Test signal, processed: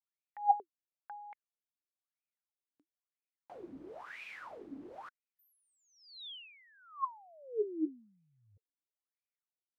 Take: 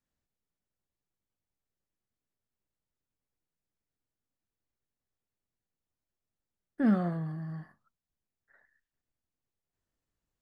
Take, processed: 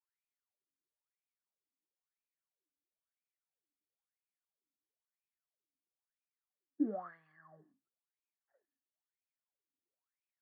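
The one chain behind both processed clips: wah 1 Hz 270–2500 Hz, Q 13; gain +5 dB

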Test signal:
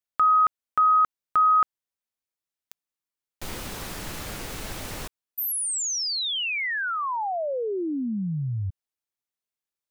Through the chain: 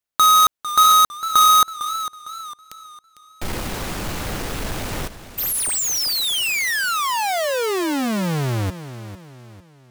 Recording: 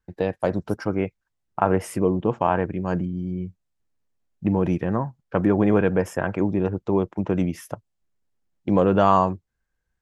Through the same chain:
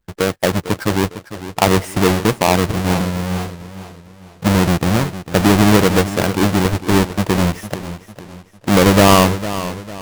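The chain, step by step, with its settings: half-waves squared off; warbling echo 0.453 s, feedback 40%, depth 74 cents, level -13 dB; gain +3 dB

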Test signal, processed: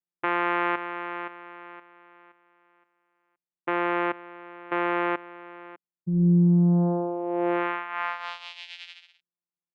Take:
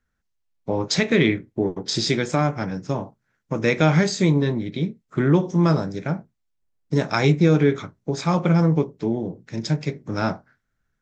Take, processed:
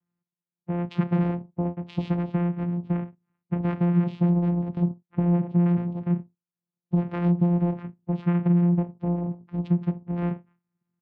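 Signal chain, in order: comb 1 ms, depth 48%; compressor, threshold -17 dBFS; vocoder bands 4, saw 174 Hz; air absorption 400 m

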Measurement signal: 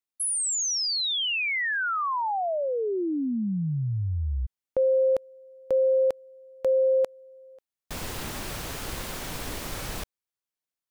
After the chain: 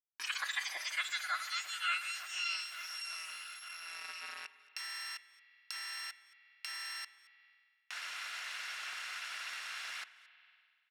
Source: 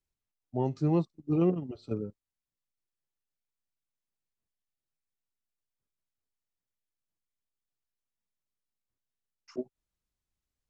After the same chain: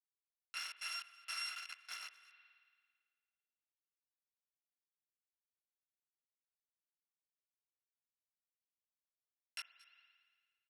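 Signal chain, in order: FFT order left unsorted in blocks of 256 samples; compressor 16:1, threshold -27 dBFS; bit-crush 6-bit; ladder band-pass 2000 Hz, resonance 35%; echo 0.223 s -23.5 dB; spring tank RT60 1.7 s, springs 44 ms, chirp 65 ms, DRR 14 dB; mismatched tape noise reduction encoder only; gain +11 dB

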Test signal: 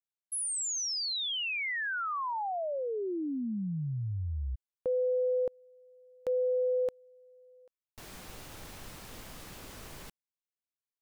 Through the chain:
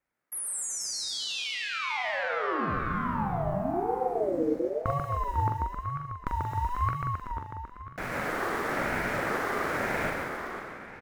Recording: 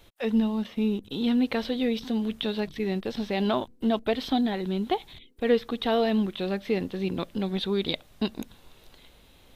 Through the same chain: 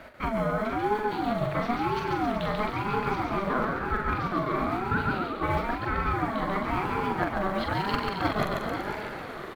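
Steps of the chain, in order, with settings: block floating point 5-bit; wow and flutter 12 Hz 33 cents; band shelf 1100 Hz +15 dB; notch 510 Hz, Q 12; reverse; compressor 4:1, threshold -31 dBFS; reverse; doubler 43 ms -5.5 dB; bouncing-ball echo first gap 0.14 s, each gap 0.9×, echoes 5; in parallel at -5 dB: hard clip -24 dBFS; on the sum: high shelf 2500 Hz -8.5 dB; vocal rider within 5 dB 0.5 s; tape echo 0.496 s, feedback 38%, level -7 dB, low-pass 4700 Hz; ring modulator with a swept carrier 510 Hz, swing 25%, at 1 Hz; gain +2 dB

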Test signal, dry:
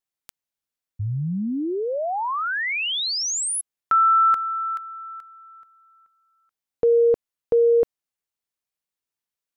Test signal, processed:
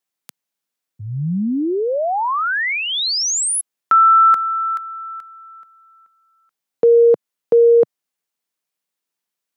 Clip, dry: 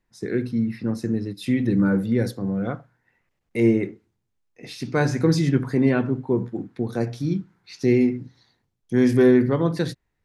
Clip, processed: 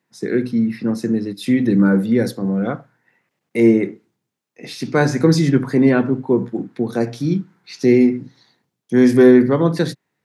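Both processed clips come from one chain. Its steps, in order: HPF 140 Hz 24 dB/oct; dynamic EQ 2800 Hz, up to -4 dB, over -45 dBFS, Q 2.9; gain +6 dB

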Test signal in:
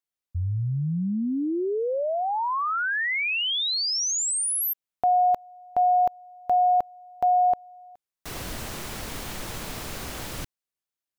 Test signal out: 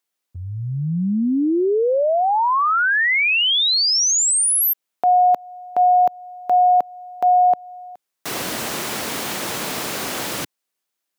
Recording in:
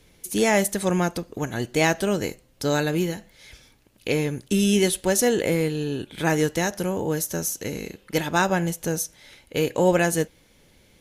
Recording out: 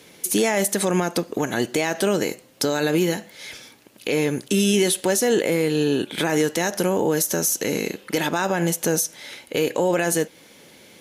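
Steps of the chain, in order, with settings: HPF 210 Hz 12 dB/oct; in parallel at +1 dB: compressor, threshold -29 dBFS; on the sum: limiter -14.5 dBFS; gain +4 dB

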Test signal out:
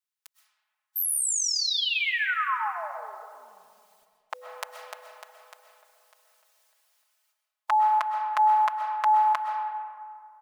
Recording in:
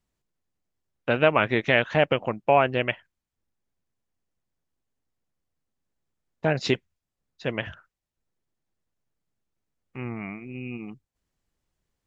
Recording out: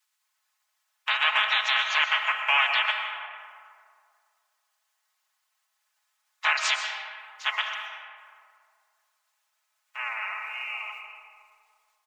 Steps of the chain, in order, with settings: spectral limiter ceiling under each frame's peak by 29 dB; inverse Chebyshev high-pass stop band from 340 Hz, stop band 50 dB; comb 4.7 ms, depth 90%; limiter -11 dBFS; digital reverb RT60 2.2 s, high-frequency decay 0.45×, pre-delay 85 ms, DRR 4 dB

